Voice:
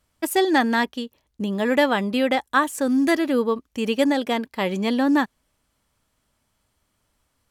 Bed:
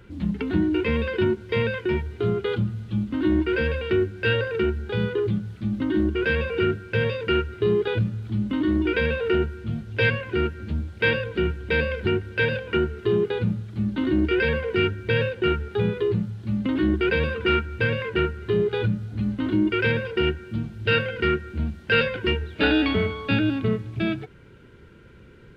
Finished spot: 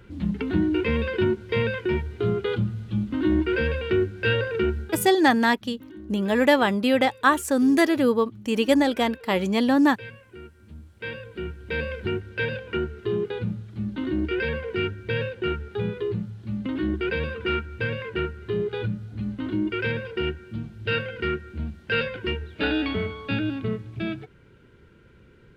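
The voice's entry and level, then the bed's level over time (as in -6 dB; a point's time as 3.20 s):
4.70 s, +0.5 dB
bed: 4.81 s -0.5 dB
5.16 s -19.5 dB
10.43 s -19.5 dB
11.89 s -4.5 dB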